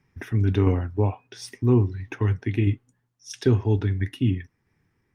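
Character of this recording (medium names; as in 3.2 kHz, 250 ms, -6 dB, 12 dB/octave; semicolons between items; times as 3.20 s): tremolo saw down 1.5 Hz, depth 40%; Opus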